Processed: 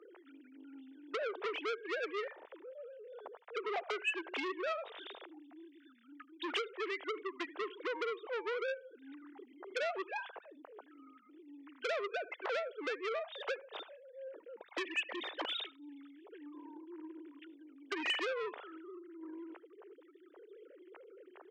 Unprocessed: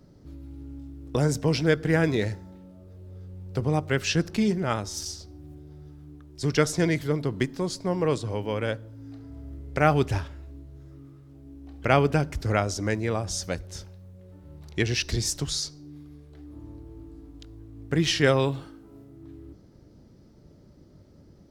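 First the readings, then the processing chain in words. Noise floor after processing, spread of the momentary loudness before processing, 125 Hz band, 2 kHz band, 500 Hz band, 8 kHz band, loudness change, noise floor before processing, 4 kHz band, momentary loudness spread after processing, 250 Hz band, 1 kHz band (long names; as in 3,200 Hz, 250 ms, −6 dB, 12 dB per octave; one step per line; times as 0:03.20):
−63 dBFS, 23 LU, below −40 dB, −8.0 dB, −11.5 dB, −26.5 dB, −13.5 dB, −54 dBFS, −9.0 dB, 20 LU, −19.0 dB, −10.5 dB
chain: three sine waves on the formant tracks
Butterworth high-pass 420 Hz 36 dB per octave
downward compressor 8 to 1, threshold −40 dBFS, peak gain reduction 24.5 dB
on a send: single-tap delay 77 ms −22 dB
on the sum: saturating transformer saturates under 2,800 Hz
level +8.5 dB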